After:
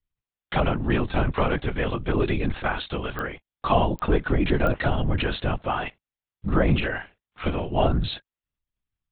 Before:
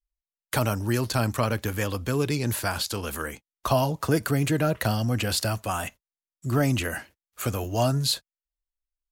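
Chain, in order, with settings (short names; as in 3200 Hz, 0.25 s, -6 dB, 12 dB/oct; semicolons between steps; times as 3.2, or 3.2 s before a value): 6.64–7.84 doubler 38 ms -8.5 dB; LPC vocoder at 8 kHz whisper; pops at 3.19/3.99/4.67, -20 dBFS; gain +2.5 dB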